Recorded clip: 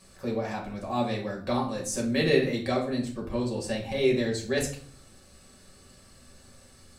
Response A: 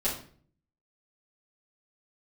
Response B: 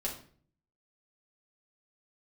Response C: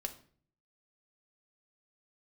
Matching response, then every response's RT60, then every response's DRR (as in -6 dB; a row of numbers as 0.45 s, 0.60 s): B; 0.50 s, 0.50 s, 0.50 s; -9.0 dB, -3.0 dB, 6.0 dB